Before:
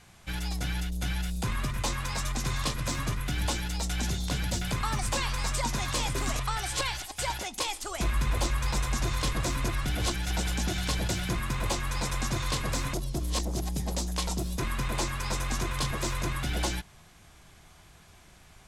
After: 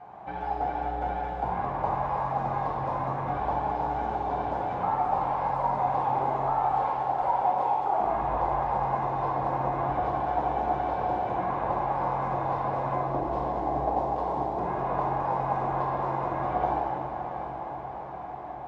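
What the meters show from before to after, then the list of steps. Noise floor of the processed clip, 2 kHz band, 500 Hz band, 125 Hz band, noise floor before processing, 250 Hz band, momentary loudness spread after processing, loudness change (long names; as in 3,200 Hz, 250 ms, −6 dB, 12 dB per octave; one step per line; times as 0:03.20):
−37 dBFS, −6.5 dB, +8.5 dB, −5.0 dB, −55 dBFS, −1.0 dB, 5 LU, +2.0 dB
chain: high-pass filter 510 Hz 6 dB per octave
downward compressor 5 to 1, threshold −42 dBFS, peak gain reduction 14 dB
low-pass with resonance 800 Hz, resonance Q 5
feedback delay with all-pass diffusion 747 ms, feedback 62%, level −9 dB
dense smooth reverb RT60 2.4 s, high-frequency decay 0.85×, DRR −5 dB
level +7.5 dB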